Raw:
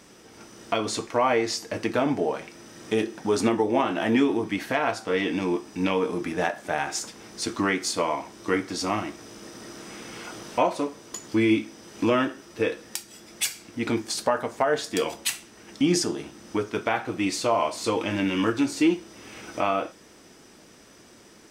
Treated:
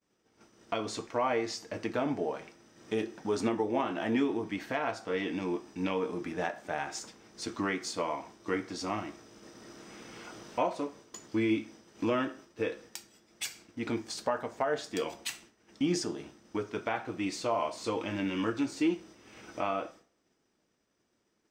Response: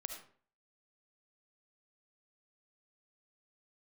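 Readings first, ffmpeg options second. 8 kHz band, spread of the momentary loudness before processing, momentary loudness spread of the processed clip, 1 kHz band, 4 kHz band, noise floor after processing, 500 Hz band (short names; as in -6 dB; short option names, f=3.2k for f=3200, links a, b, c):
-10.5 dB, 15 LU, 16 LU, -7.5 dB, -9.0 dB, -76 dBFS, -7.5 dB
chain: -filter_complex "[0:a]agate=range=-33dB:threshold=-40dB:ratio=3:detection=peak,equalizer=f=11k:t=o:w=0.38:g=-13,asplit=2[a][b];[1:a]atrim=start_sample=2205,lowpass=2.3k[c];[b][c]afir=irnorm=-1:irlink=0,volume=-13dB[d];[a][d]amix=inputs=2:normalize=0,volume=-8.5dB"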